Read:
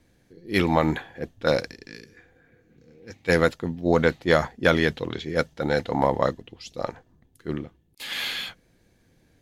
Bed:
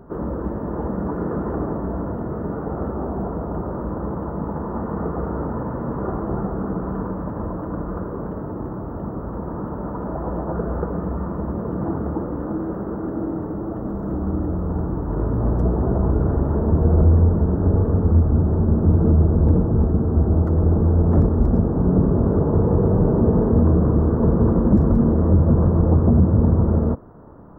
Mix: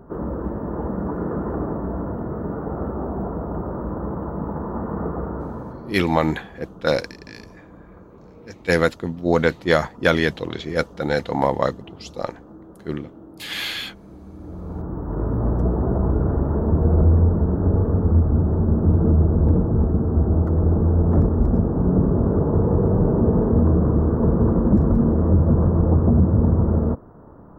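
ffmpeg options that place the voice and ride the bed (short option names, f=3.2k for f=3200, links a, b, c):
-filter_complex "[0:a]adelay=5400,volume=2dB[a];[1:a]volume=15.5dB,afade=t=out:st=5.08:d=0.98:silence=0.149624,afade=t=in:st=14.35:d=0.96:silence=0.149624[b];[a][b]amix=inputs=2:normalize=0"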